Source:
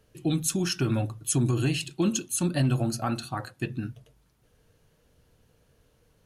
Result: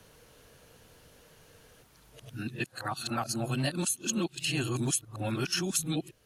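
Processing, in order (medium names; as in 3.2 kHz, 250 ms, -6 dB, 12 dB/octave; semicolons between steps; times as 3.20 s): reverse the whole clip; bass shelf 430 Hz -8 dB; three bands compressed up and down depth 40%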